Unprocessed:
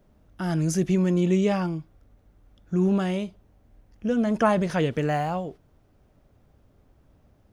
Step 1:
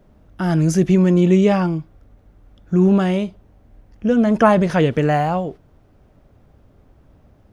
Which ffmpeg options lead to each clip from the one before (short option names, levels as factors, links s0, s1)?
-af "highshelf=f=4000:g=-6.5,volume=2.51"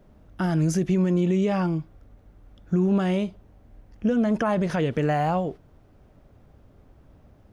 -af "alimiter=limit=0.224:level=0:latency=1:release=195,volume=0.794"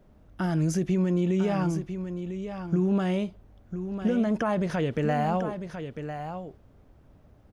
-af "aecho=1:1:999:0.355,volume=0.708"